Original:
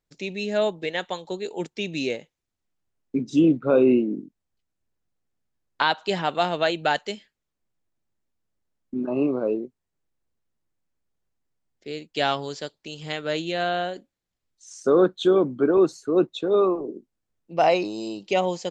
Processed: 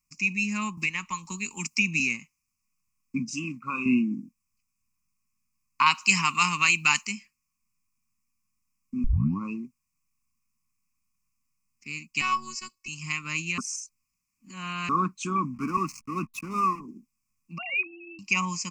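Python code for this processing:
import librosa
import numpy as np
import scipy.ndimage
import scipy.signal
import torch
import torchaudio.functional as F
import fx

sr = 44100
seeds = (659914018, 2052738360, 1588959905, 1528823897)

y = fx.band_squash(x, sr, depth_pct=100, at=(0.77, 2.0))
y = fx.low_shelf(y, sr, hz=460.0, db=-11.5, at=(3.31, 3.86))
y = fx.high_shelf(y, sr, hz=2200.0, db=11.0, at=(5.86, 7.07))
y = fx.robotise(y, sr, hz=372.0, at=(12.21, 12.88))
y = fx.backlash(y, sr, play_db=-37.0, at=(15.53, 16.79), fade=0.02)
y = fx.sine_speech(y, sr, at=(17.58, 18.19))
y = fx.edit(y, sr, fx.tape_start(start_s=9.04, length_s=0.41),
    fx.reverse_span(start_s=13.58, length_s=1.31), tone=tone)
y = fx.curve_eq(y, sr, hz=(130.0, 230.0, 460.0, 670.0, 1100.0, 1600.0, 2500.0, 3500.0, 5100.0), db=(0, 4, -28, -30, 12, -12, 15, -20, 11))
y = y * 10.0 ** (-1.5 / 20.0)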